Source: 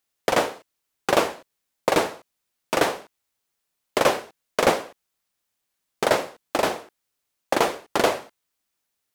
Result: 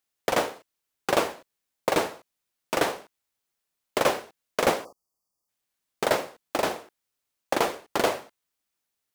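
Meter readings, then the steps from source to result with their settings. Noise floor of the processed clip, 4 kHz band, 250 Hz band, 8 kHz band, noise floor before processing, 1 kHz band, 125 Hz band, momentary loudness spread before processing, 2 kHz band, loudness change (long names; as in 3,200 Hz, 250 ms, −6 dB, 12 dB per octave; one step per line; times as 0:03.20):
−83 dBFS, −3.5 dB, −3.5 dB, −3.0 dB, −79 dBFS, −3.5 dB, −3.5 dB, 9 LU, −3.5 dB, −3.5 dB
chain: floating-point word with a short mantissa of 2 bits
time-frequency box erased 0:04.85–0:05.48, 1,300–4,400 Hz
level −3.5 dB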